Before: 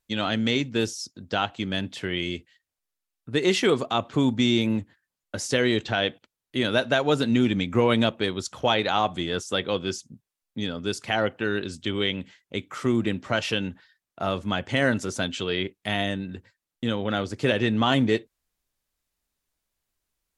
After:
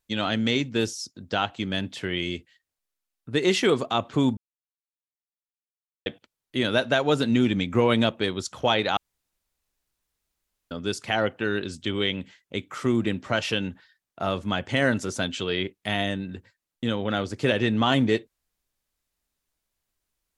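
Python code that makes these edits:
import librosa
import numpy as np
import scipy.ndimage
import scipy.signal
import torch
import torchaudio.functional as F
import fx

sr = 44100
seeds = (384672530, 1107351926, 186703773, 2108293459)

y = fx.edit(x, sr, fx.silence(start_s=4.37, length_s=1.69),
    fx.room_tone_fill(start_s=8.97, length_s=1.74), tone=tone)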